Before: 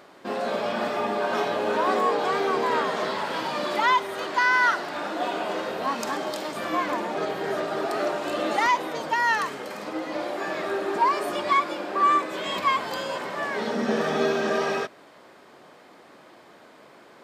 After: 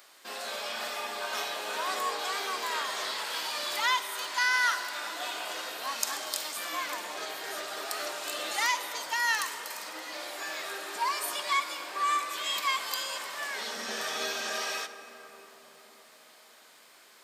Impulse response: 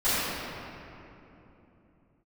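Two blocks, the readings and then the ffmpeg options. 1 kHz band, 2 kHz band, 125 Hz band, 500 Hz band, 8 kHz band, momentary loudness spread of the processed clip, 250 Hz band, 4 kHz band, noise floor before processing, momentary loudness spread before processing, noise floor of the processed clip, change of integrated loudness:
-8.5 dB, -4.0 dB, under -20 dB, -14.5 dB, +7.5 dB, 9 LU, -19.5 dB, +2.0 dB, -51 dBFS, 9 LU, -56 dBFS, -6.0 dB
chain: -filter_complex "[0:a]aderivative,asplit=2[a][b];[1:a]atrim=start_sample=2205,asetrate=22491,aresample=44100[c];[b][c]afir=irnorm=-1:irlink=0,volume=-30.5dB[d];[a][d]amix=inputs=2:normalize=0,volume=7.5dB"

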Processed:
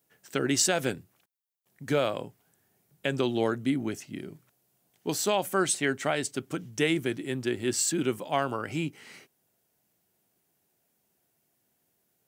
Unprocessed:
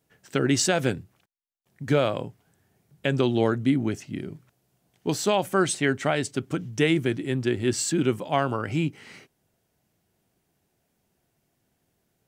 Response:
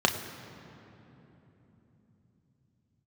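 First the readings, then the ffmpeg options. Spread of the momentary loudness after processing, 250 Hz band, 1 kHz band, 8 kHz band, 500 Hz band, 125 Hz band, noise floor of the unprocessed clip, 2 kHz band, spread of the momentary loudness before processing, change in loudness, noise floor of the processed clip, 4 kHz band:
13 LU, -5.0 dB, -3.0 dB, +1.0 dB, -4.0 dB, -8.0 dB, -74 dBFS, -2.5 dB, 11 LU, -3.5 dB, -75 dBFS, -1.5 dB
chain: -af "highpass=f=210:p=1,highshelf=f=9.5k:g=11.5,volume=-3dB"

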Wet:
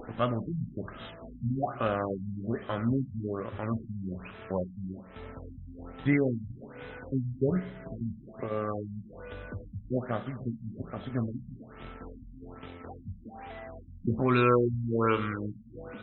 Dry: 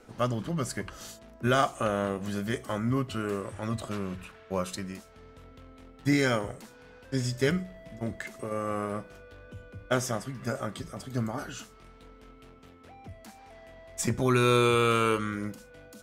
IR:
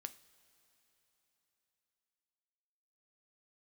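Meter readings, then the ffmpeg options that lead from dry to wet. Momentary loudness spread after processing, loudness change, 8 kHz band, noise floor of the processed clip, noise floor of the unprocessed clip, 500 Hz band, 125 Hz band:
18 LU, -2.0 dB, under -40 dB, -50 dBFS, -53 dBFS, -2.0 dB, -0.5 dB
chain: -filter_complex "[0:a]acompressor=mode=upward:threshold=-29dB:ratio=2.5,aeval=exprs='sgn(val(0))*max(abs(val(0))-0.00398,0)':c=same[a];[1:a]atrim=start_sample=2205,asetrate=33957,aresample=44100[b];[a][b]afir=irnorm=-1:irlink=0,afftfilt=real='re*lt(b*sr/1024,230*pow(4100/230,0.5+0.5*sin(2*PI*1.2*pts/sr)))':imag='im*lt(b*sr/1024,230*pow(4100/230,0.5+0.5*sin(2*PI*1.2*pts/sr)))':win_size=1024:overlap=0.75,volume=3.5dB"

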